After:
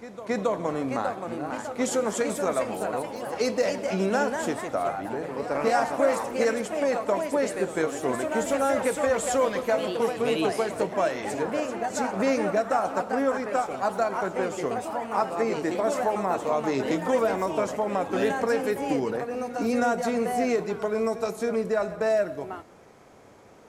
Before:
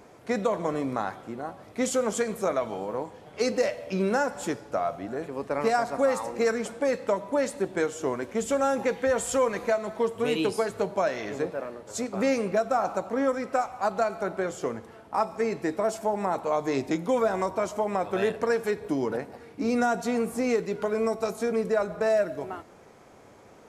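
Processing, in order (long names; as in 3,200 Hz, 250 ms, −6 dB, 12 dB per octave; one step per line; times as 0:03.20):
echo ahead of the sound 273 ms −14.5 dB
delay with pitch and tempo change per echo 645 ms, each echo +2 semitones, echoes 3, each echo −6 dB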